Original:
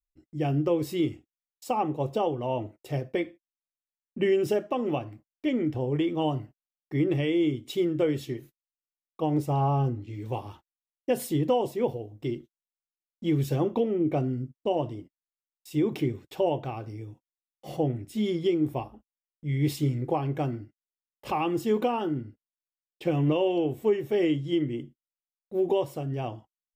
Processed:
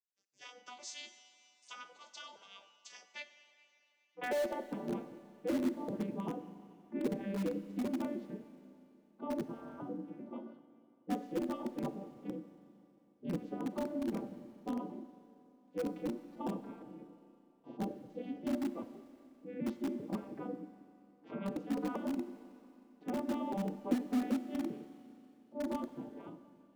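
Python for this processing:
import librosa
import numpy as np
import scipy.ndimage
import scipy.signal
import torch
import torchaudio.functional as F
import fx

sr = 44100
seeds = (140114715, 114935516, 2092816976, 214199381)

p1 = fx.vocoder_arp(x, sr, chord='major triad', root=55, every_ms=392)
p2 = fx.spec_gate(p1, sr, threshold_db=-15, keep='weak')
p3 = fx.filter_sweep_bandpass(p2, sr, from_hz=6300.0, to_hz=270.0, start_s=3.42, end_s=4.76, q=2.4)
p4 = (np.mod(10.0 ** (46.0 / 20.0) * p3 + 1.0, 2.0) - 1.0) / 10.0 ** (46.0 / 20.0)
p5 = p3 + (p4 * librosa.db_to_amplitude(-11.5))
p6 = fx.rev_schroeder(p5, sr, rt60_s=3.0, comb_ms=31, drr_db=12.5)
y = p6 * librosa.db_to_amplitude(15.0)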